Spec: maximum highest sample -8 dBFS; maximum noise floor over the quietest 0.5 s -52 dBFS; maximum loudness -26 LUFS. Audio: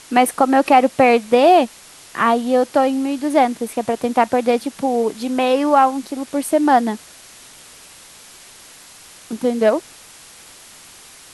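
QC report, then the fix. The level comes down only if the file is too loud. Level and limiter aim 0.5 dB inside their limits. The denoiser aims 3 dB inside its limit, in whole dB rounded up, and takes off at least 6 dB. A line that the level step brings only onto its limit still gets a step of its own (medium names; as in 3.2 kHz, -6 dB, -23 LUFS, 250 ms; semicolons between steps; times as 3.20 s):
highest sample -2.5 dBFS: fail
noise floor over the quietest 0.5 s -43 dBFS: fail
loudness -17.0 LUFS: fail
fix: trim -9.5 dB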